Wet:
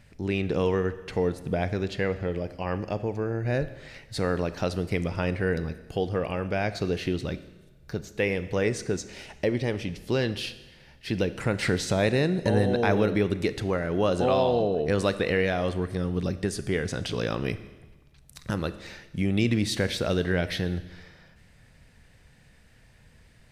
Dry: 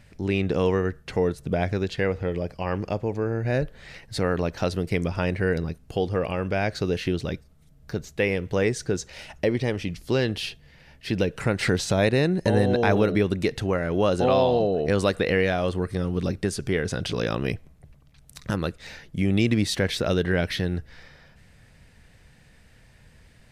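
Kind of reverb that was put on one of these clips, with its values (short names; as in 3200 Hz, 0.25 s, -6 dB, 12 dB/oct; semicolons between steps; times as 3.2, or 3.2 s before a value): Schroeder reverb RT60 1.2 s, combs from 26 ms, DRR 13 dB; gain -2.5 dB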